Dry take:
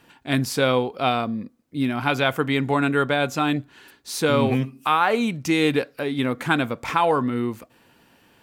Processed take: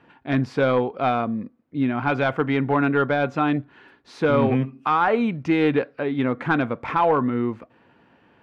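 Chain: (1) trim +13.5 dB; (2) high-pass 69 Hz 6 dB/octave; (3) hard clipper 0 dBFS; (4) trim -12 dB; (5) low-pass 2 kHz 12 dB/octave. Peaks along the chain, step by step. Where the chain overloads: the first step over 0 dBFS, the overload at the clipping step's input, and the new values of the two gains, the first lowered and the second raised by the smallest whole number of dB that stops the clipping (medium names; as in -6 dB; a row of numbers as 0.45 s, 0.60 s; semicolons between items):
+8.0 dBFS, +8.5 dBFS, 0.0 dBFS, -12.0 dBFS, -11.5 dBFS; step 1, 8.5 dB; step 1 +4.5 dB, step 4 -3 dB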